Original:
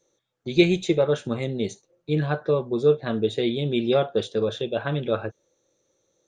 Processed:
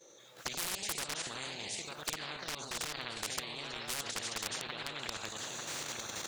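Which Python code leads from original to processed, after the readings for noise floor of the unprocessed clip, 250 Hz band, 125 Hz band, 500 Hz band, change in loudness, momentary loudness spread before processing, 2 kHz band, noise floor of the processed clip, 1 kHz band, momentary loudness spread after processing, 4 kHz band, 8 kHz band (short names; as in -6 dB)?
-73 dBFS, -25.0 dB, -24.0 dB, -25.0 dB, -14.0 dB, 8 LU, -6.0 dB, -58 dBFS, -8.0 dB, 4 LU, -3.5 dB, n/a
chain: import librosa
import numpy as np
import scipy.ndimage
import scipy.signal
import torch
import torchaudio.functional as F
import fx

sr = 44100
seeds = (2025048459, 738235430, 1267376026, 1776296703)

y = fx.recorder_agc(x, sr, target_db=-14.0, rise_db_per_s=60.0, max_gain_db=30)
y = fx.highpass(y, sr, hz=110.0, slope=6)
y = fx.echo_pitch(y, sr, ms=108, semitones=1, count=3, db_per_echo=-6.0)
y = fx.level_steps(y, sr, step_db=10)
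y = y + 10.0 ** (-17.5 / 20.0) * np.pad(y, (int(895 * sr / 1000.0), 0))[:len(y)]
y = 10.0 ** (-17.5 / 20.0) * (np.abs((y / 10.0 ** (-17.5 / 20.0) + 3.0) % 4.0 - 2.0) - 1.0)
y = fx.low_shelf(y, sr, hz=250.0, db=-8.5)
y = fx.spectral_comp(y, sr, ratio=10.0)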